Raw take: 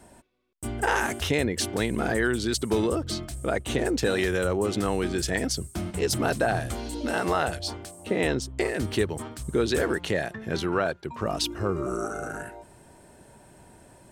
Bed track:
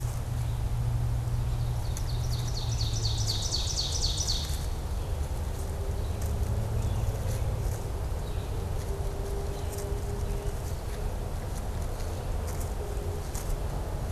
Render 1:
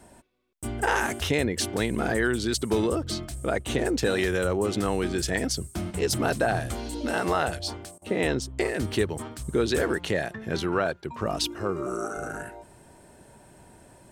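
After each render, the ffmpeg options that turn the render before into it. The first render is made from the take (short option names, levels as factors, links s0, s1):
-filter_complex "[0:a]asettb=1/sr,asplit=3[s0][s1][s2];[s0]atrim=end=11.474[s3];[s1]atrim=start=11.47:end=12.17,asetpts=PTS-STARTPTS,afade=t=in:d=0.004:c=qsin,afade=t=out:st=0.696:d=0.004:c=qsin,highpass=f=190:p=1[s4];[s2]atrim=start=12.166[s5];[s3][s4]acrossfade=d=0.004:c1=hsin:c2=qsin[s6];[s6][s5]acrossfade=d=0.004:c1=qsin:c2=hsin,asplit=3[s7][s8][s9];[s7]atrim=end=7.98,asetpts=PTS-STARTPTS,afade=t=out:st=7.64:d=0.34:c=log:silence=0.0794328[s10];[s8]atrim=start=7.98:end=8.02,asetpts=PTS-STARTPTS,volume=0.0794[s11];[s9]atrim=start=8.02,asetpts=PTS-STARTPTS,afade=t=in:d=0.34:c=log:silence=0.0794328[s12];[s10][s11][s12]concat=n=3:v=0:a=1"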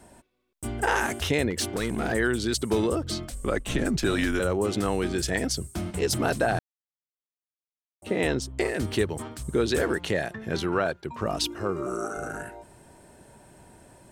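-filter_complex "[0:a]asettb=1/sr,asplit=3[s0][s1][s2];[s0]atrim=end=1.504[s3];[s1]atrim=start=1.5:end=2.13,asetpts=PTS-STARTPTS,afade=t=in:d=0.004:c=qsin,afade=t=out:st=0.626:d=0.004:c=qsin,asoftclip=type=hard:threshold=0.0794[s4];[s2]atrim=start=2.126[s5];[s3][s4]acrossfade=d=0.004:c1=hsin:c2=qsin[s6];[s6][s5]acrossfade=d=0.004:c1=qsin:c2=hsin,asettb=1/sr,asplit=3[s7][s8][s9];[s7]atrim=end=3.304[s10];[s8]atrim=start=3.3:end=4.4,asetpts=PTS-STARTPTS,afade=t=in:d=0.004:c=qsin,afade=t=out:st=1.096:d=0.004:c=qsin,afreqshift=-110[s11];[s9]atrim=start=4.396[s12];[s10][s11]acrossfade=d=0.004:c1=hsin:c2=qsin[s13];[s13][s12]acrossfade=d=0.004:c1=qsin:c2=hsin,asplit=3[s14][s15][s16];[s14]atrim=end=6.59,asetpts=PTS-STARTPTS,afade=t=out:st=6.586:d=0.004:c=hsin[s17];[s15]atrim=start=6.59:end=8.02,asetpts=PTS-STARTPTS,volume=0[s18];[s16]atrim=start=8.02,asetpts=PTS-STARTPTS,afade=t=in:d=0.004:c=hsin[s19];[s17][s18][s19]concat=n=3:v=0:a=1"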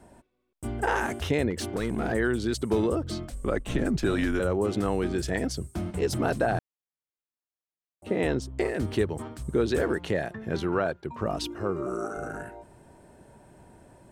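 -af "highshelf=f=2000:g=-8.5"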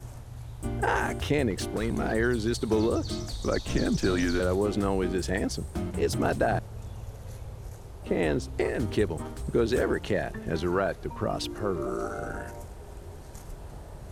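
-filter_complex "[1:a]volume=0.299[s0];[0:a][s0]amix=inputs=2:normalize=0"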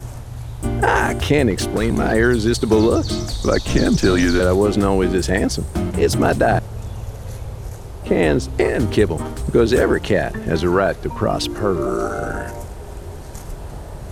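-af "volume=3.35,alimiter=limit=0.708:level=0:latency=1"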